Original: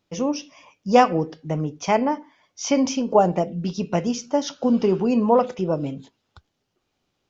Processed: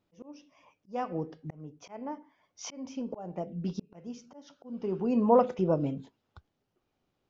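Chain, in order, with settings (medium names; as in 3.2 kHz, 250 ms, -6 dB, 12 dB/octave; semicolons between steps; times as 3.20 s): treble shelf 2.5 kHz -10.5 dB; slow attack 795 ms; trim -3 dB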